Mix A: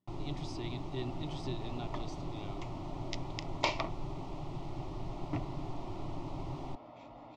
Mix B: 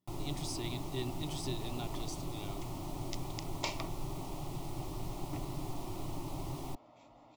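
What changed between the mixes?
second sound -8.5 dB; master: remove distance through air 160 m

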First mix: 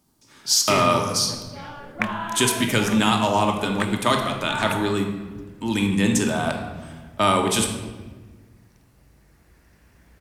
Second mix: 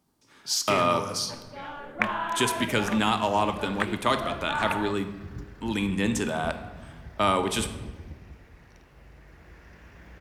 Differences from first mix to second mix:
speech: send -8.0 dB; second sound +8.5 dB; master: add tone controls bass -3 dB, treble -6 dB

